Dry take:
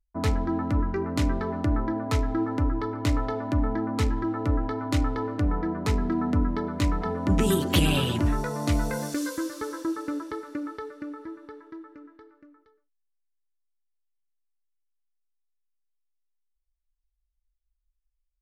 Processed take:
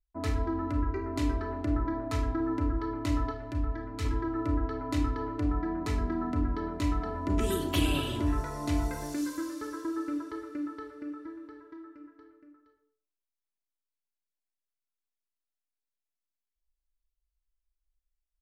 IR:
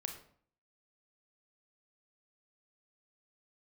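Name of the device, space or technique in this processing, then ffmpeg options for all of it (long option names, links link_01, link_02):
microphone above a desk: -filter_complex "[0:a]aecho=1:1:3:0.57[link_01];[1:a]atrim=start_sample=2205[link_02];[link_01][link_02]afir=irnorm=-1:irlink=0,asettb=1/sr,asplit=3[link_03][link_04][link_05];[link_03]atrim=end=3.314[link_06];[link_04]atrim=start=3.31:end=4.05,asetpts=PTS-STARTPTS,afade=type=in:duration=0.004:curve=qsin,afade=type=out:start_time=0.736:duration=0.004:curve=qsin,equalizer=frequency=250:width_type=o:width=1:gain=-6,equalizer=frequency=500:width_type=o:width=1:gain=-4,equalizer=frequency=1000:width_type=o:width=1:gain=-6[link_07];[link_05]atrim=start=4.046[link_08];[link_06][link_07]acrossfade=duration=0.004:curve1=hsin:curve2=qsin[link_09];[link_09][link_08]acrossfade=duration=0.004:curve1=qsin:curve2=hsin,volume=-6dB"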